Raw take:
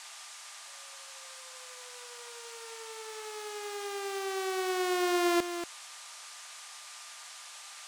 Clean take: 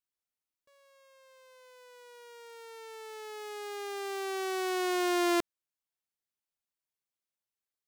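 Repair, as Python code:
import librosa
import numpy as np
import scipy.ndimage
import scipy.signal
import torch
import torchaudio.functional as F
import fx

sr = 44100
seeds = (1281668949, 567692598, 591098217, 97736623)

y = fx.notch(x, sr, hz=1200.0, q=30.0)
y = fx.noise_reduce(y, sr, print_start_s=7.14, print_end_s=7.64, reduce_db=30.0)
y = fx.fix_echo_inverse(y, sr, delay_ms=235, level_db=-9.5)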